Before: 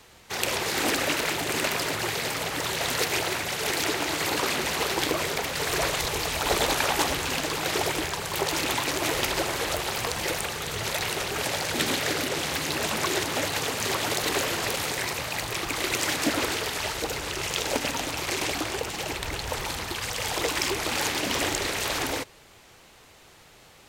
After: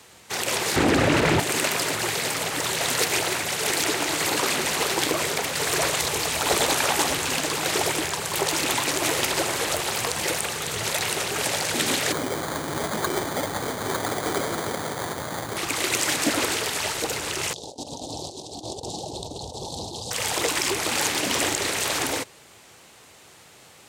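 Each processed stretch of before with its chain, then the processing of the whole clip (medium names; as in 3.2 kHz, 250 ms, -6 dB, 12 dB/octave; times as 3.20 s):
0.76–1.40 s: RIAA curve playback + level flattener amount 100%
12.12–15.57 s: median filter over 9 samples + sample-rate reducer 2.7 kHz
17.53–20.11 s: Chebyshev band-stop 830–3800 Hz, order 3 + compressor with a negative ratio -35 dBFS, ratio -0.5 + distance through air 76 m
whole clip: high-pass 92 Hz; peaking EQ 8.5 kHz +5.5 dB 0.82 oct; loudness maximiser +10 dB; trim -8 dB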